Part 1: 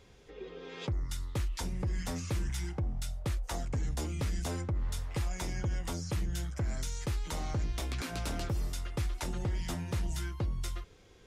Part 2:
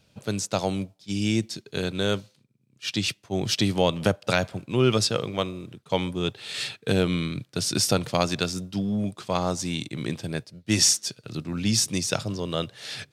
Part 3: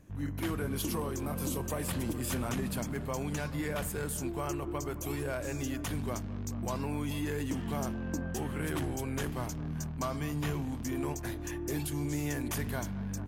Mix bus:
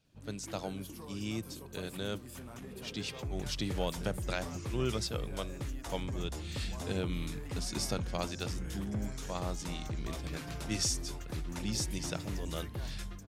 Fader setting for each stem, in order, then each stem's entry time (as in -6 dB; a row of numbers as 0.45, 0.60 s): -6.0, -13.0, -13.5 dB; 2.35, 0.00, 0.05 s